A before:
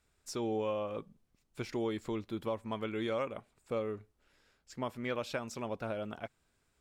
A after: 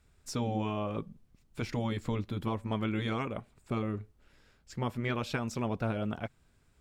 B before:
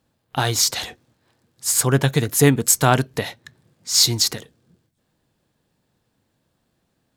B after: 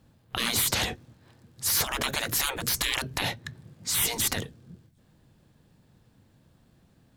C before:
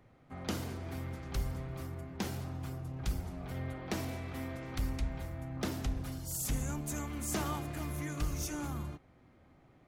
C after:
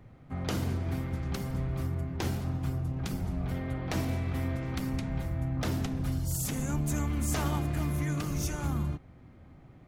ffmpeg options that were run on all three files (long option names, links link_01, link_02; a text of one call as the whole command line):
ffmpeg -i in.wav -af "afftfilt=real='re*lt(hypot(re,im),0.112)':imag='im*lt(hypot(re,im),0.112)':win_size=1024:overlap=0.75,bass=frequency=250:gain=8,treble=frequency=4000:gain=-2,volume=4dB" out.wav